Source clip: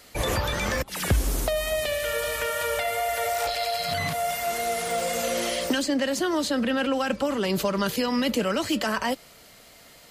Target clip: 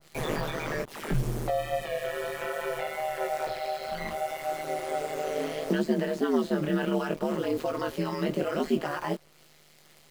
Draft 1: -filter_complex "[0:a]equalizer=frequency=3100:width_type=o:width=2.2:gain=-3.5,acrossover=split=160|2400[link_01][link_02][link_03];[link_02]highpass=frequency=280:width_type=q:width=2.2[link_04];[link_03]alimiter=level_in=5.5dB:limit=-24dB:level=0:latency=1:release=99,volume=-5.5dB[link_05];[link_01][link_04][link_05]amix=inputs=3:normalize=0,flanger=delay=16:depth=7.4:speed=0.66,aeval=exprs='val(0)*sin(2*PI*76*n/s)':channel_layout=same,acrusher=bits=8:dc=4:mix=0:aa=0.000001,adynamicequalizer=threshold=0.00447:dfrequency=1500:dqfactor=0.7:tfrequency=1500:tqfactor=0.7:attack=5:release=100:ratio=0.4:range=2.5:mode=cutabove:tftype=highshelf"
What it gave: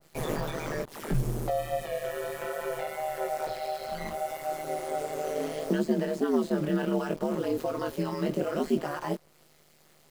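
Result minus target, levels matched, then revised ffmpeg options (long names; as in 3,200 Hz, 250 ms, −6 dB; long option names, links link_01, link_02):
4,000 Hz band −3.0 dB
-filter_complex "[0:a]equalizer=frequency=3100:width_type=o:width=2.2:gain=3.5,acrossover=split=160|2400[link_01][link_02][link_03];[link_02]highpass=frequency=280:width_type=q:width=2.2[link_04];[link_03]alimiter=level_in=5.5dB:limit=-24dB:level=0:latency=1:release=99,volume=-5.5dB[link_05];[link_01][link_04][link_05]amix=inputs=3:normalize=0,flanger=delay=16:depth=7.4:speed=0.66,aeval=exprs='val(0)*sin(2*PI*76*n/s)':channel_layout=same,acrusher=bits=8:dc=4:mix=0:aa=0.000001,adynamicequalizer=threshold=0.00447:dfrequency=1500:dqfactor=0.7:tfrequency=1500:tqfactor=0.7:attack=5:release=100:ratio=0.4:range=2.5:mode=cutabove:tftype=highshelf"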